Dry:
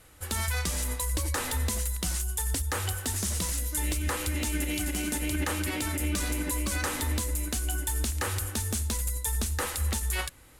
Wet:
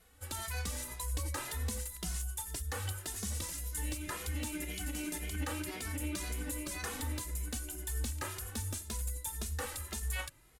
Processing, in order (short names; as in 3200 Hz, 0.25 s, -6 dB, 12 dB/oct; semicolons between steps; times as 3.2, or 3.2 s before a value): endless flanger 2.4 ms +1.9 Hz; gain -5.5 dB